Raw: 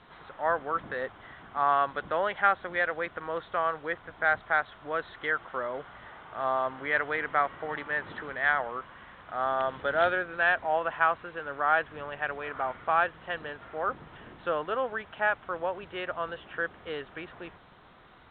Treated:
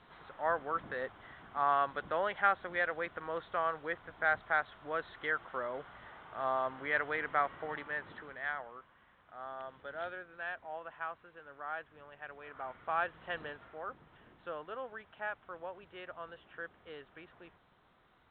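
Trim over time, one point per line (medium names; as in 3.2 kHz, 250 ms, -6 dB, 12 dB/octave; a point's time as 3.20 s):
7.64 s -5 dB
8.94 s -16 dB
12.16 s -16 dB
13.42 s -4 dB
13.85 s -12.5 dB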